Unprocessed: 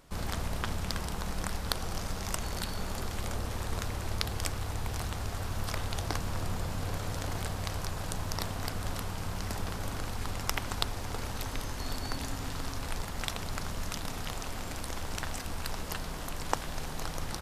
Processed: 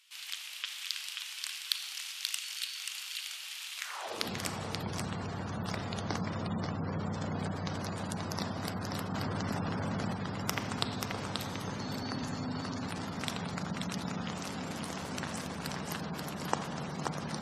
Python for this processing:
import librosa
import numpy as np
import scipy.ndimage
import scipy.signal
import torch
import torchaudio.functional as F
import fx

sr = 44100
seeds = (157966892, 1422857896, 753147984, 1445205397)

p1 = fx.filter_sweep_highpass(x, sr, from_hz=2800.0, to_hz=170.0, start_s=3.76, end_s=4.33, q=2.6)
p2 = p1 + fx.echo_single(p1, sr, ms=533, db=-4.5, dry=0)
p3 = fx.rev_schroeder(p2, sr, rt60_s=1.5, comb_ms=28, drr_db=8.5)
p4 = fx.spec_gate(p3, sr, threshold_db=-25, keep='strong')
p5 = fx.env_flatten(p4, sr, amount_pct=70, at=(9.14, 10.13))
y = p5 * librosa.db_to_amplitude(-2.0)